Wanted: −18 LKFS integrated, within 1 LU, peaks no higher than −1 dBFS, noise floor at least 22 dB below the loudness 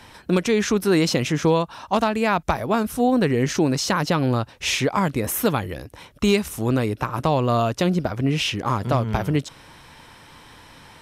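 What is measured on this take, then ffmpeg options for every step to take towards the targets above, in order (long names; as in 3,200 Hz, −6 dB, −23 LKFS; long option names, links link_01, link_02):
integrated loudness −22.0 LKFS; sample peak −9.0 dBFS; target loudness −18.0 LKFS
→ -af "volume=4dB"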